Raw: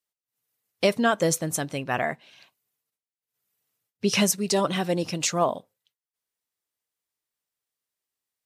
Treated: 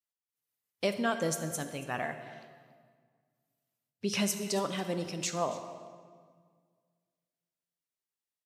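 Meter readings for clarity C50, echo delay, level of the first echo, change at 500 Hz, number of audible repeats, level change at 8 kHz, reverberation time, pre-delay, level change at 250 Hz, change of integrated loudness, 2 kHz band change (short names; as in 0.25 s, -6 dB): 9.0 dB, 0.28 s, -19.0 dB, -8.5 dB, 1, -8.5 dB, 1.8 s, 14 ms, -8.0 dB, -8.5 dB, -8.0 dB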